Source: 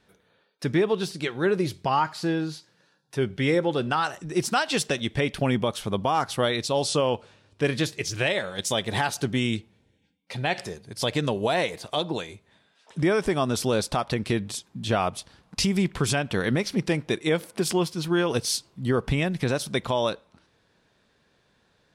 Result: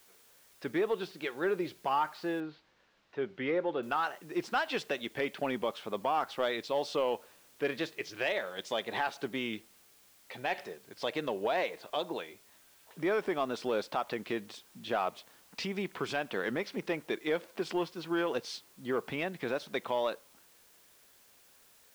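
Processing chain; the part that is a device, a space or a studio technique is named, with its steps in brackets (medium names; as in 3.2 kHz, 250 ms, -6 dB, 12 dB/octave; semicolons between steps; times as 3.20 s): tape answering machine (band-pass 330–3000 Hz; saturation -14 dBFS, distortion -22 dB; wow and flutter; white noise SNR 27 dB); 2.40–3.83 s: distance through air 220 m; trim -5 dB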